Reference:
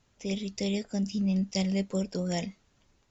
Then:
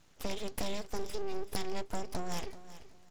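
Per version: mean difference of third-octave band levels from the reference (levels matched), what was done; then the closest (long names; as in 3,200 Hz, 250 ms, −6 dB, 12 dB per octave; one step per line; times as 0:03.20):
12.0 dB: full-wave rectification
downward compressor 6 to 1, threshold −37 dBFS, peak gain reduction 12 dB
on a send: repeating echo 382 ms, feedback 24%, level −15 dB
on the sum: level +6 dB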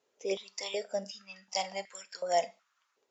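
8.0 dB: four-comb reverb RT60 0.42 s, combs from 31 ms, DRR 16.5 dB
noise reduction from a noise print of the clip's start 8 dB
high-pass on a step sequencer 2.7 Hz 440–1,900 Hz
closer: second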